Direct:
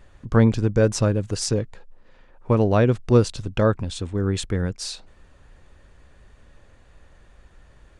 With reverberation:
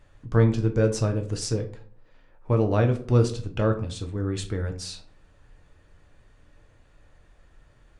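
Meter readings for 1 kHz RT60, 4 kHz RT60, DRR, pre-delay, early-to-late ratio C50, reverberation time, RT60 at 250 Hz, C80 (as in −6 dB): 0.45 s, 0.30 s, 4.0 dB, 4 ms, 12.5 dB, 0.50 s, 0.65 s, 17.0 dB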